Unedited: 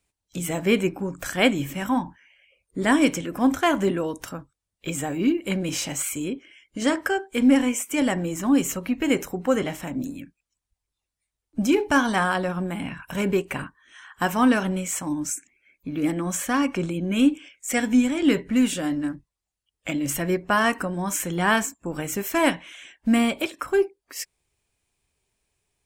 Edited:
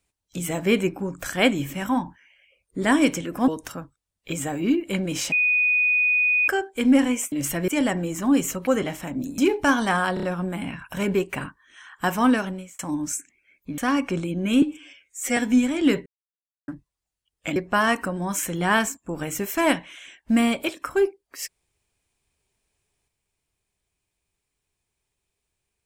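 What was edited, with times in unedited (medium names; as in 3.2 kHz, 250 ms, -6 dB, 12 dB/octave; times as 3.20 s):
3.48–4.05 s: delete
5.89–7.05 s: bleep 2.48 kHz -17 dBFS
8.88–9.47 s: delete
10.18–11.65 s: delete
12.41 s: stutter 0.03 s, 4 plays
14.45–14.97 s: fade out
15.96–16.44 s: delete
17.28–17.78 s: stretch 1.5×
18.47–19.09 s: mute
19.97–20.33 s: move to 7.89 s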